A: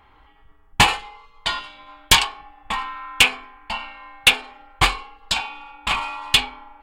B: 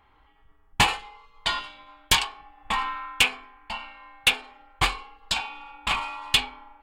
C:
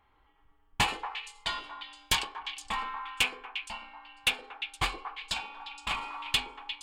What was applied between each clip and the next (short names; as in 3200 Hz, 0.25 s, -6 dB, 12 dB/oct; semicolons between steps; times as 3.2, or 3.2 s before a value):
AGC gain up to 11 dB; gain -7 dB
delay with a stepping band-pass 0.117 s, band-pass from 390 Hz, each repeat 1.4 oct, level -3 dB; gain -7 dB